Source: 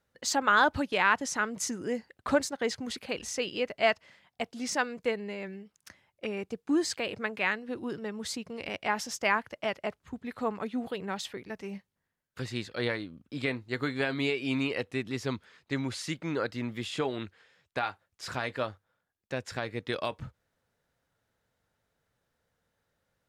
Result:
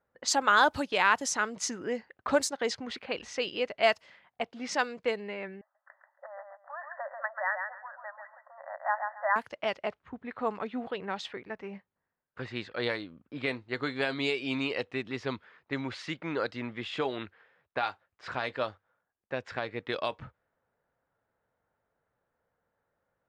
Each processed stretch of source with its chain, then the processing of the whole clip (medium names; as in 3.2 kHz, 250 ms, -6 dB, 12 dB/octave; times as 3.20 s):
5.61–9.36 s: brick-wall FIR band-pass 540–2000 Hz + feedback delay 137 ms, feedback 19%, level -5.5 dB
whole clip: bass shelf 380 Hz -11.5 dB; level-controlled noise filter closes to 1.2 kHz, open at -25.5 dBFS; dynamic bell 1.9 kHz, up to -5 dB, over -43 dBFS, Q 0.79; trim +5 dB